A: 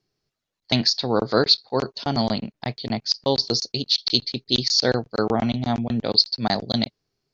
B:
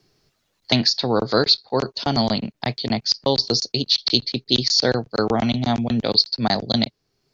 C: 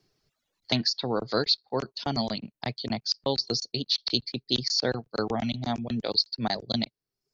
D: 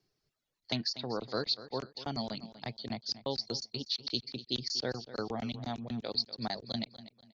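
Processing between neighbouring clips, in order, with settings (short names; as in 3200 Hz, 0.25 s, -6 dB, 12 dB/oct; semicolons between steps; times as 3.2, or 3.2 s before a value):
three-band squash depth 40%; gain +2 dB
reverb removal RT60 0.72 s; gain -7.5 dB
feedback echo 0.243 s, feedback 31%, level -15 dB; gain -8 dB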